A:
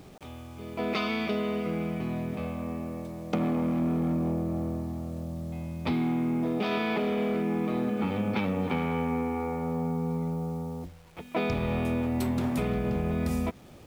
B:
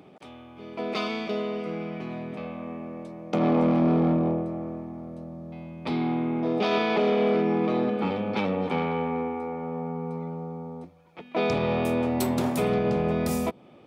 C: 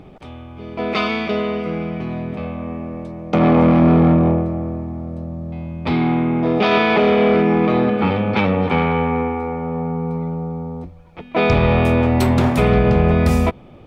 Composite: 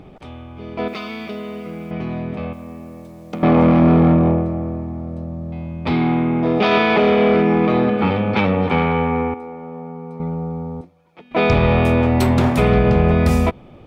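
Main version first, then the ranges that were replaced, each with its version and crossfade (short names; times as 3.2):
C
0.88–1.91 from A
2.53–3.43 from A
9.34–10.2 from B
10.81–11.31 from B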